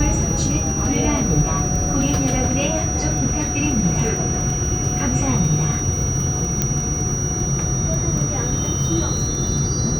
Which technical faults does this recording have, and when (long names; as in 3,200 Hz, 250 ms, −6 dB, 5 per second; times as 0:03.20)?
surface crackle 17 per second −24 dBFS
whistle 5,800 Hz −24 dBFS
0:06.62: click −4 dBFS